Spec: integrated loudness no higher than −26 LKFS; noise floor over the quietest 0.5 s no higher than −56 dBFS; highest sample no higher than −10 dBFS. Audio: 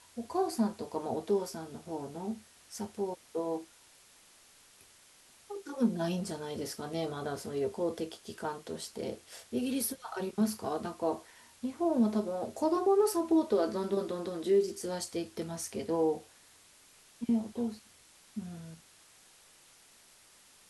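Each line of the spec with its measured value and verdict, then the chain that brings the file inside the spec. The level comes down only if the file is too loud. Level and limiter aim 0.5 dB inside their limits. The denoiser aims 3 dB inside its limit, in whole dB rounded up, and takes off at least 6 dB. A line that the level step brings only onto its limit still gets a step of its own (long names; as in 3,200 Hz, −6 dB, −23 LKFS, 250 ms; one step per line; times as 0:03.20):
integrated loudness −33.5 LKFS: in spec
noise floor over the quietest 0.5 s −60 dBFS: in spec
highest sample −17.5 dBFS: in spec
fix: no processing needed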